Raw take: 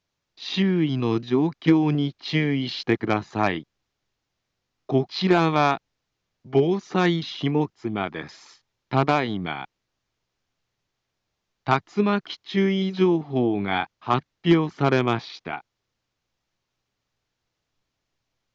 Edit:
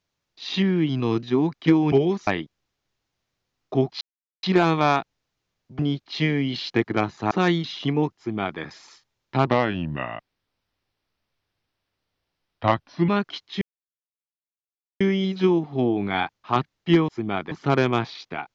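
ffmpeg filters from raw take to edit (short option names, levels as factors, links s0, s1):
-filter_complex "[0:a]asplit=11[s0][s1][s2][s3][s4][s5][s6][s7][s8][s9][s10];[s0]atrim=end=1.922[s11];[s1]atrim=start=6.538:end=6.892[s12];[s2]atrim=start=3.438:end=5.18,asetpts=PTS-STARTPTS,afade=t=out:st=1.738:d=0.004:c=hsin,apad=pad_dur=0.42[s13];[s3]atrim=start=5.18:end=6.542,asetpts=PTS-STARTPTS,afade=t=in:d=0.004:c=hsin[s14];[s4]atrim=start=1.918:end=3.442[s15];[s5]atrim=start=6.888:end=9.054[s16];[s6]atrim=start=9.05:end=12.05,asetpts=PTS-STARTPTS,asetrate=36603,aresample=44100[s17];[s7]atrim=start=12.046:end=12.58,asetpts=PTS-STARTPTS,afade=t=out:st=0.53:d=0.004:c=hsin,apad=pad_dur=1.39[s18];[s8]atrim=start=12.58:end=14.662,asetpts=PTS-STARTPTS,afade=t=in:d=0.004:c=hsin[s19];[s9]atrim=start=7.748:end=8.182[s20];[s10]atrim=start=14.658[s21];[s11][s12]acrossfade=d=0.004:c1=hsin:c2=hsin[s22];[s13][s14]concat=n=2:v=0:a=1[s23];[s22][s23]acrossfade=d=0.004:c1=hsin:c2=hsin[s24];[s24][s15]acrossfade=d=0.004:c1=hsin:c2=hsin[s25];[s25][s16]acrossfade=d=0.004:c1=hsin:c2=hsin[s26];[s26][s17]acrossfade=d=0.004:c1=hsin:c2=hsin[s27];[s18][s19]concat=n=2:v=0:a=1[s28];[s27][s28]acrossfade=d=0.004:c1=hsin:c2=hsin[s29];[s29][s20]acrossfade=d=0.004:c1=hsin:c2=hsin[s30];[s30][s21]acrossfade=d=0.004:c1=hsin:c2=hsin"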